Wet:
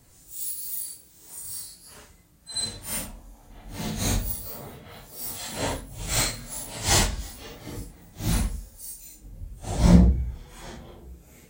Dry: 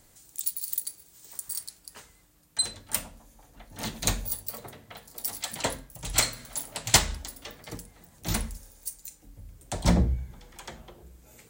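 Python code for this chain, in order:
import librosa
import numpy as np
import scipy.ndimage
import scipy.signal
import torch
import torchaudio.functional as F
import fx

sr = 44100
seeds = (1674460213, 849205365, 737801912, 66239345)

y = fx.phase_scramble(x, sr, seeds[0], window_ms=200)
y = fx.low_shelf(y, sr, hz=460.0, db=7.0)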